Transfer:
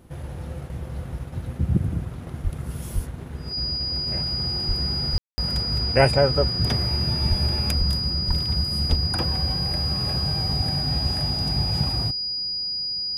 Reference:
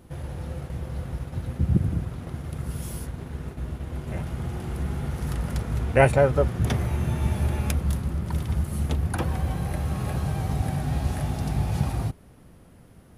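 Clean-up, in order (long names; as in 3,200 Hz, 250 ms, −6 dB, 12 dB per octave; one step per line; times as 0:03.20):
notch filter 4,900 Hz, Q 30
high-pass at the plosives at 0:02.43/0:02.94/0:04.67/0:05.12/0:07.29/0:07.78/0:08.27/0:08.89
ambience match 0:05.18–0:05.38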